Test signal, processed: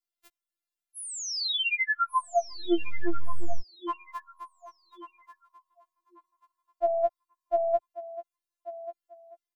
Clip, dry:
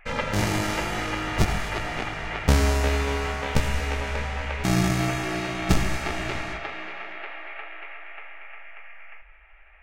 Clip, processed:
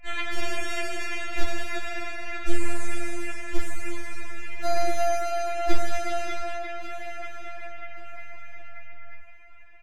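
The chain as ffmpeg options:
ffmpeg -i in.wav -filter_complex "[0:a]acrossover=split=4600[link_01][link_02];[link_02]acompressor=threshold=-38dB:ratio=4:attack=1:release=60[link_03];[link_01][link_03]amix=inputs=2:normalize=0,acrossover=split=260[link_04][link_05];[link_04]aeval=exprs='abs(val(0))':channel_layout=same[link_06];[link_05]aecho=1:1:1139|2278|3417:0.2|0.0519|0.0135[link_07];[link_06][link_07]amix=inputs=2:normalize=0,afftfilt=real='re*4*eq(mod(b,16),0)':imag='im*4*eq(mod(b,16),0)':win_size=2048:overlap=0.75" out.wav

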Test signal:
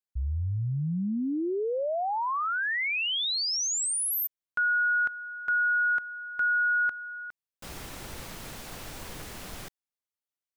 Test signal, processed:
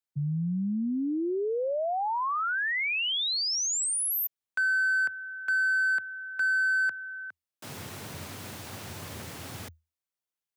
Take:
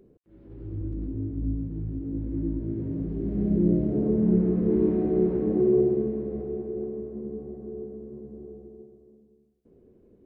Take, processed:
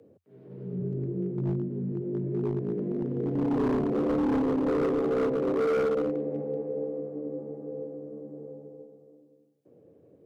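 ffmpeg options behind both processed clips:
ffmpeg -i in.wav -af "afreqshift=80,asoftclip=type=hard:threshold=-23dB" out.wav

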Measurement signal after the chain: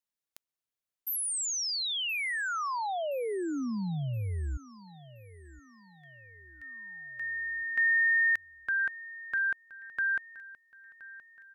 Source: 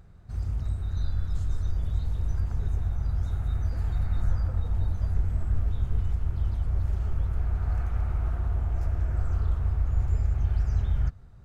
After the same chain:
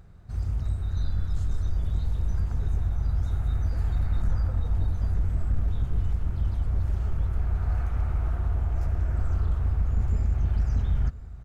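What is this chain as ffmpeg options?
ffmpeg -i in.wav -filter_complex "[0:a]volume=20dB,asoftclip=hard,volume=-20dB,asplit=2[link_01][link_02];[link_02]aecho=0:1:1022|2044|3066|4088:0.112|0.0505|0.0227|0.0102[link_03];[link_01][link_03]amix=inputs=2:normalize=0,volume=1.5dB" out.wav

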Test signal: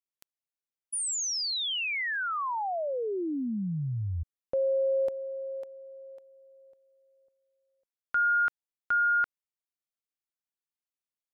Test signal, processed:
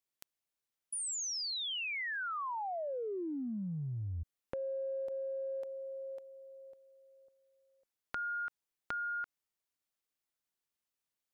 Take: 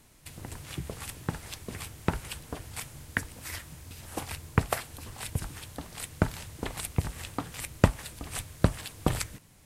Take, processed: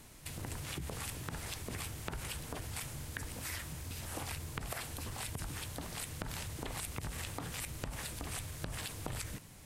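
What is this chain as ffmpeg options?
ffmpeg -i in.wav -af "acompressor=threshold=-40dB:ratio=12:attack=2.8:release=54:knee=6:detection=peak,volume=3.5dB" out.wav

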